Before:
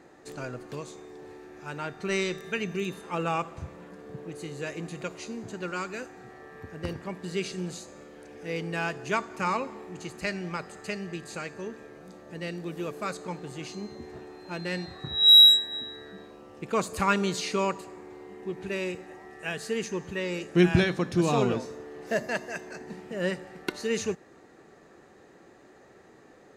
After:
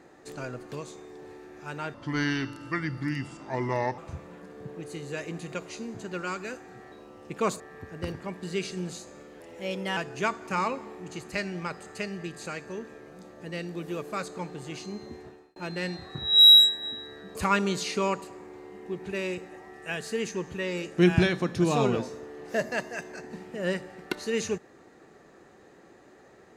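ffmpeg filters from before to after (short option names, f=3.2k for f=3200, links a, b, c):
-filter_complex "[0:a]asplit=9[a][b][c][d][e][f][g][h][i];[a]atrim=end=1.944[j];[b]atrim=start=1.94:end=3.47,asetpts=PTS-STARTPTS,asetrate=33075,aresample=44100[k];[c]atrim=start=3.466:end=6.412[l];[d]atrim=start=16.238:end=16.922[m];[e]atrim=start=6.408:end=8.214[n];[f]atrim=start=8.21:end=8.86,asetpts=PTS-STARTPTS,asetrate=50274,aresample=44100[o];[g]atrim=start=8.856:end=14.45,asetpts=PTS-STARTPTS,afade=t=out:st=5.164:d=0.43[p];[h]atrim=start=14.45:end=16.242,asetpts=PTS-STARTPTS,afade=t=in:d=0.004:c=hsin[q];[i]atrim=start=16.918[r];[j][k]acrossfade=d=0.004:c1=hsin:c2=hsin[s];[s][l]acrossfade=d=0.004:c1=hsin:c2=hsin[t];[t][m]acrossfade=d=0.004:c1=hsin:c2=hsin[u];[u][n]acrossfade=d=0.004:c1=hsin:c2=hsin[v];[v][o]acrossfade=d=0.004:c1=hsin:c2=hsin[w];[p][q]concat=n=2:v=0:a=1[x];[w][x]acrossfade=d=0.004:c1=hsin:c2=hsin[y];[y][r]acrossfade=d=0.004:c1=hsin:c2=hsin"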